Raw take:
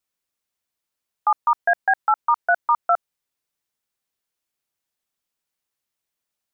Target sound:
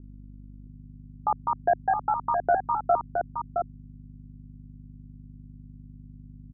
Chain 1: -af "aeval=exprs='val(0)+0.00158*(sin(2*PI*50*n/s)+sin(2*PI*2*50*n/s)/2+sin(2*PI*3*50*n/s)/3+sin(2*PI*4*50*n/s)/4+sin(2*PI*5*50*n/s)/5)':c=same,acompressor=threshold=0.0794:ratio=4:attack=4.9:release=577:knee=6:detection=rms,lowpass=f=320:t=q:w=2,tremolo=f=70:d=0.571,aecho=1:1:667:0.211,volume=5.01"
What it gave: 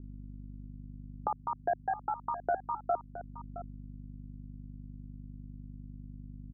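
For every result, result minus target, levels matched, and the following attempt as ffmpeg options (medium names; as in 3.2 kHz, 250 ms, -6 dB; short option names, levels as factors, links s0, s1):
compression: peak gain reduction +8.5 dB; echo-to-direct -8 dB
-af "aeval=exprs='val(0)+0.00158*(sin(2*PI*50*n/s)+sin(2*PI*2*50*n/s)/2+sin(2*PI*3*50*n/s)/3+sin(2*PI*4*50*n/s)/4+sin(2*PI*5*50*n/s)/5)':c=same,lowpass=f=320:t=q:w=2,tremolo=f=70:d=0.571,aecho=1:1:667:0.211,volume=5.01"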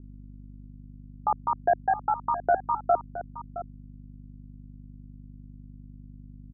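echo-to-direct -8 dB
-af "aeval=exprs='val(0)+0.00158*(sin(2*PI*50*n/s)+sin(2*PI*2*50*n/s)/2+sin(2*PI*3*50*n/s)/3+sin(2*PI*4*50*n/s)/4+sin(2*PI*5*50*n/s)/5)':c=same,lowpass=f=320:t=q:w=2,tremolo=f=70:d=0.571,aecho=1:1:667:0.531,volume=5.01"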